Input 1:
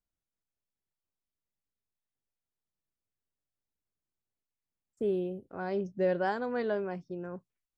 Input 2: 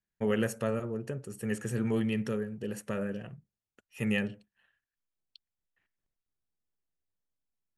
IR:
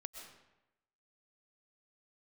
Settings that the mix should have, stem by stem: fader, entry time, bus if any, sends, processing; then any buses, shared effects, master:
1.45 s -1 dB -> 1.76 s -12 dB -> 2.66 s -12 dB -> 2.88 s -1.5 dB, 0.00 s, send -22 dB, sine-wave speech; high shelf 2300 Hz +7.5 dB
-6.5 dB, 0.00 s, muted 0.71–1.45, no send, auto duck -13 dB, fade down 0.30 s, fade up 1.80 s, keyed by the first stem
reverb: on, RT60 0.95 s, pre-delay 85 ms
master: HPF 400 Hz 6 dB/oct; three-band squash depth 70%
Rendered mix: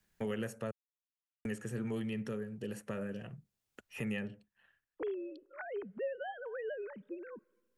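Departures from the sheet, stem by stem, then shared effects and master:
stem 1 -1.0 dB -> -10.5 dB; master: missing HPF 400 Hz 6 dB/oct

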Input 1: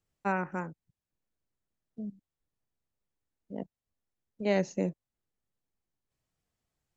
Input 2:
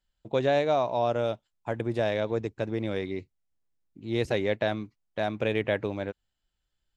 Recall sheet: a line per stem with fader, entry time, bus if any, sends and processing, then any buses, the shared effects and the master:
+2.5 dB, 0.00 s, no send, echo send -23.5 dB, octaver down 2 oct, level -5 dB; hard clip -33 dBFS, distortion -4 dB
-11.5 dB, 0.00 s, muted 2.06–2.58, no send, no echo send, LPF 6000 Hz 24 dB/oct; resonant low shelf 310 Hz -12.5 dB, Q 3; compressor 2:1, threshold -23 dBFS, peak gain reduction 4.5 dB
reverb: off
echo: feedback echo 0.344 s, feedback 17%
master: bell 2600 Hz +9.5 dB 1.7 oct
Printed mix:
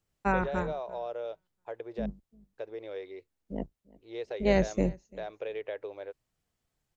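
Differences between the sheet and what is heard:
stem 1: missing hard clip -33 dBFS, distortion -4 dB; master: missing bell 2600 Hz +9.5 dB 1.7 oct

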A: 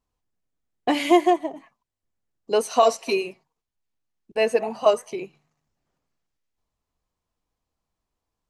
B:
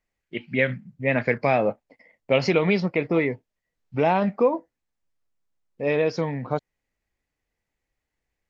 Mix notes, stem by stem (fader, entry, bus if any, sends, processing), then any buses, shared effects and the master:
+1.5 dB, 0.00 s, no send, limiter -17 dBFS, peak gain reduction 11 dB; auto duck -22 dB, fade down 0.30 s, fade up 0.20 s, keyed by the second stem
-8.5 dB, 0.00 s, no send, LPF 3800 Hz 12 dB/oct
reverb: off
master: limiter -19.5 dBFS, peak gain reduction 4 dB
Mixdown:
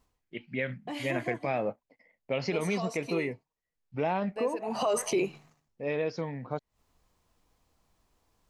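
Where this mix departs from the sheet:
stem A +1.5 dB -> +11.0 dB; stem B: missing LPF 3800 Hz 12 dB/oct

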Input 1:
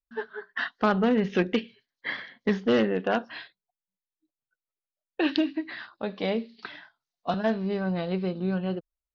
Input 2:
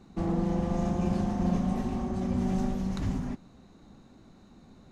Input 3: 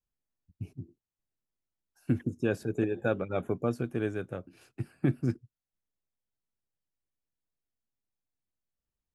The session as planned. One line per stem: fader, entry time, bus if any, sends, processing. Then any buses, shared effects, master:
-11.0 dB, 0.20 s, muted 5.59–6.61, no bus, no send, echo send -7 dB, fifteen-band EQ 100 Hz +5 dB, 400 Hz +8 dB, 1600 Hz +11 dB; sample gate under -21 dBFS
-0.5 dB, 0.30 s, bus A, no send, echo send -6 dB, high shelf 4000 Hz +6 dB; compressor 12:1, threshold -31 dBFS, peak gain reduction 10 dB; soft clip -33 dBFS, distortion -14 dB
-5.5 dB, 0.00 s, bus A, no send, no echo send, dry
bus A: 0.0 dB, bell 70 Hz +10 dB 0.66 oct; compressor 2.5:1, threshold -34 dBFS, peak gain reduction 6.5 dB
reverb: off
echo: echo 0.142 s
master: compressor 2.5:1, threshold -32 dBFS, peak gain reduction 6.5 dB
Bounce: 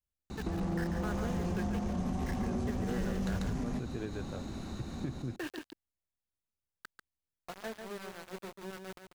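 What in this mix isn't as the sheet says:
stem 1 -11.0 dB -> -19.0 dB; stem 2 -0.5 dB -> +11.5 dB

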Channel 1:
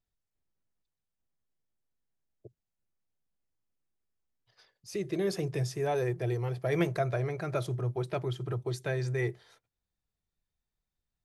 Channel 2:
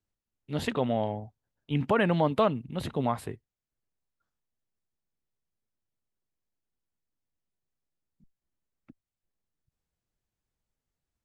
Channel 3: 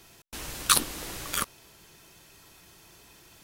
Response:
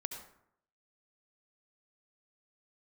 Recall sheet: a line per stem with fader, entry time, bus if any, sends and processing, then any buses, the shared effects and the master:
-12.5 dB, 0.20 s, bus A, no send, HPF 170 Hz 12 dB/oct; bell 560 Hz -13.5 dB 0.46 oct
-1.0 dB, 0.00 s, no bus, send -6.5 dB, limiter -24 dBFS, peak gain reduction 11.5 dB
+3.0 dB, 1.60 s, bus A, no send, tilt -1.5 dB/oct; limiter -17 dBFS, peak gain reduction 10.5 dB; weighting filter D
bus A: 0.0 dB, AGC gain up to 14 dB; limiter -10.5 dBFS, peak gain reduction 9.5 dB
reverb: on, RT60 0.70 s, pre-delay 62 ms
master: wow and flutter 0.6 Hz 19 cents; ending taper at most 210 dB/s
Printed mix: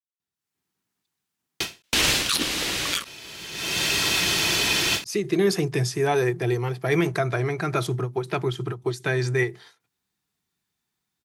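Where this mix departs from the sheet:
stem 1 -12.5 dB -> -1.5 dB; stem 2: muted; stem 3 +3.0 dB -> +14.0 dB; reverb: off

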